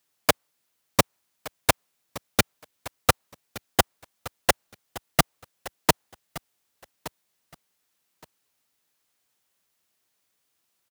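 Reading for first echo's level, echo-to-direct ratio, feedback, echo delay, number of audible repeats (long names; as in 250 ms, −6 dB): −18.0 dB, −18.0 dB, 20%, 1,169 ms, 2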